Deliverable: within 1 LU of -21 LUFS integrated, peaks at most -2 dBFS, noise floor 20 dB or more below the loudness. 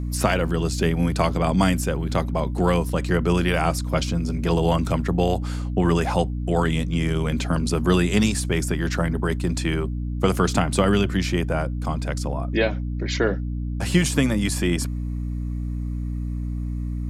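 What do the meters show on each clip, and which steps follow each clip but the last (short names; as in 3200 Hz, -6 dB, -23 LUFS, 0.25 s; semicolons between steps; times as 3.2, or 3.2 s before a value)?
hum 60 Hz; harmonics up to 300 Hz; hum level -24 dBFS; loudness -23.0 LUFS; peak -5.0 dBFS; loudness target -21.0 LUFS
-> de-hum 60 Hz, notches 5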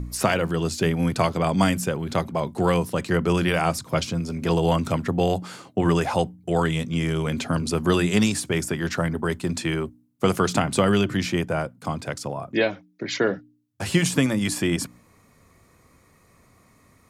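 hum none; loudness -24.0 LUFS; peak -6.5 dBFS; loudness target -21.0 LUFS
-> gain +3 dB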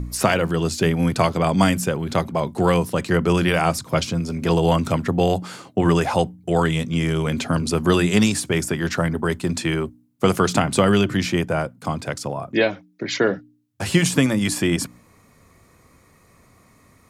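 loudness -21.0 LUFS; peak -3.5 dBFS; noise floor -55 dBFS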